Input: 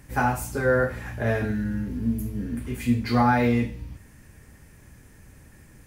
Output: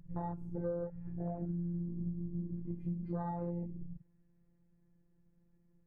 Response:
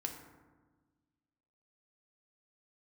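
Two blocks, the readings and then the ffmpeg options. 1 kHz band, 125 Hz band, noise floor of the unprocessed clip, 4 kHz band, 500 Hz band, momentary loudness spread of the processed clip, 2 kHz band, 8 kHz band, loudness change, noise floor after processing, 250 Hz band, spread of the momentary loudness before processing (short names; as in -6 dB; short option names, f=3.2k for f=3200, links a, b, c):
-20.0 dB, -11.5 dB, -52 dBFS, under -40 dB, -15.5 dB, 5 LU, under -35 dB, under -35 dB, -15.0 dB, -71 dBFS, -13.5 dB, 11 LU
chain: -af "lowpass=f=1.1k:p=1,tiltshelf=f=700:g=8,afftfilt=real='hypot(re,im)*cos(PI*b)':imag='0':win_size=1024:overlap=0.75,afwtdn=0.0316,acompressor=threshold=-31dB:ratio=4,volume=-4.5dB"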